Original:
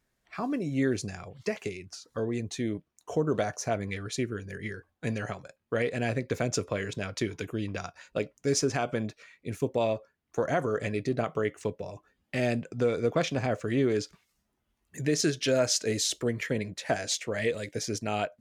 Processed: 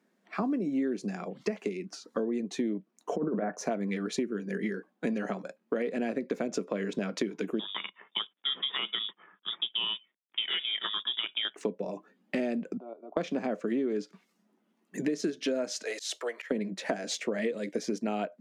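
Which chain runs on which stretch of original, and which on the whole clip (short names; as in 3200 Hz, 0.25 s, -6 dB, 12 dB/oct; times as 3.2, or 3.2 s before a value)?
3.16–3.57 Chebyshev low-pass 1900 Hz, order 3 + negative-ratio compressor -29 dBFS, ratio -0.5
7.59–11.56 G.711 law mismatch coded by A + inverted band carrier 3600 Hz
12.77–13.17 fixed phaser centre 480 Hz, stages 6 + level quantiser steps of 12 dB + ladder band-pass 700 Hz, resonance 50%
15.83–16.51 HPF 640 Hz 24 dB/oct + auto swell 0.154 s
whole clip: Chebyshev high-pass 190 Hz, order 5; tilt -3 dB/oct; compressor 6:1, threshold -34 dBFS; gain +6 dB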